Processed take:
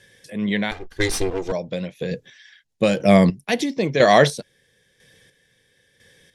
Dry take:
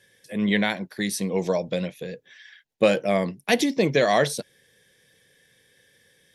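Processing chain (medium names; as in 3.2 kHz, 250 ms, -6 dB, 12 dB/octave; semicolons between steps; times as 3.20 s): 0.71–1.52 s: comb filter that takes the minimum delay 2.5 ms; low-pass 9.8 kHz 12 dB/octave; bass shelf 82 Hz +9 dB; square tremolo 1 Hz, depth 60%, duty 30%; 2.11–3.45 s: tone controls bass +7 dB, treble +7 dB; trim +6.5 dB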